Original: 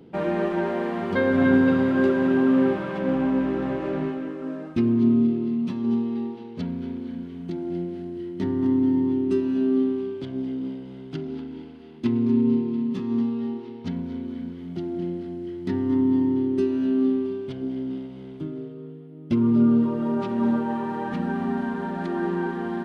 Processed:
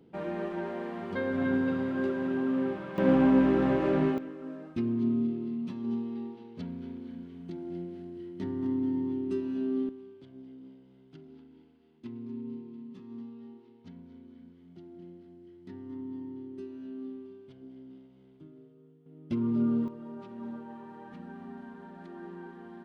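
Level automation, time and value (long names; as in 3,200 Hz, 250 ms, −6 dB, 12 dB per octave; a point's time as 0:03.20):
−10 dB
from 0:02.98 +1 dB
from 0:04.18 −9 dB
from 0:09.89 −19 dB
from 0:19.06 −9 dB
from 0:19.88 −18 dB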